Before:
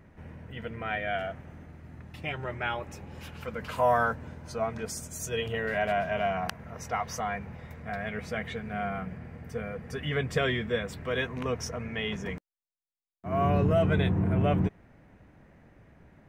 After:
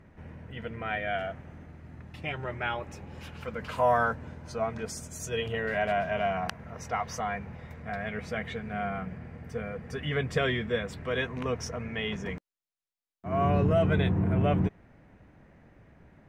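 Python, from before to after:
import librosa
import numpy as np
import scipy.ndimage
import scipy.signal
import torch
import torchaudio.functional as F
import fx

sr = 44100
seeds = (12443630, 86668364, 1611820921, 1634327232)

y = fx.high_shelf(x, sr, hz=12000.0, db=-11.5)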